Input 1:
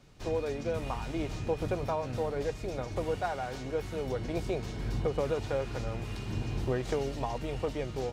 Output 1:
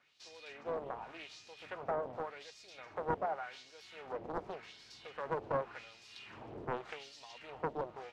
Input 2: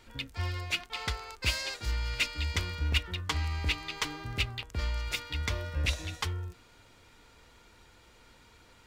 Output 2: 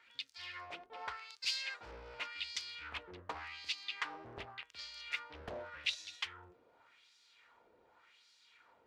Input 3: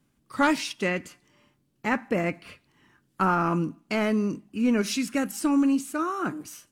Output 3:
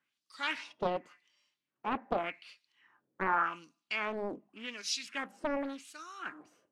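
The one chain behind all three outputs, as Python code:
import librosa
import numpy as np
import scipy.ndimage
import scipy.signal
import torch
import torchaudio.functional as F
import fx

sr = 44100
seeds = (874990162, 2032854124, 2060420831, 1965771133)

y = fx.filter_lfo_bandpass(x, sr, shape='sine', hz=0.87, low_hz=490.0, high_hz=5000.0, q=2.0)
y = fx.doppler_dist(y, sr, depth_ms=1.0)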